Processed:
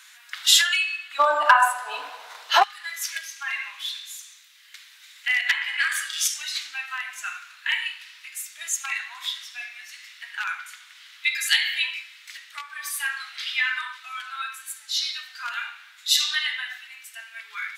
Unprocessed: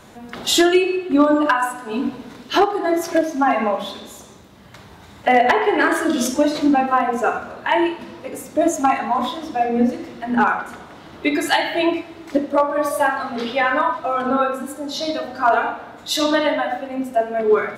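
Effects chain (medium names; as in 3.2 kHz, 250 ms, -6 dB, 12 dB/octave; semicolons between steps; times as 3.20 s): inverse Chebyshev high-pass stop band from 470 Hz, stop band 60 dB, from 1.18 s stop band from 220 Hz, from 2.62 s stop band from 570 Hz; trim +3 dB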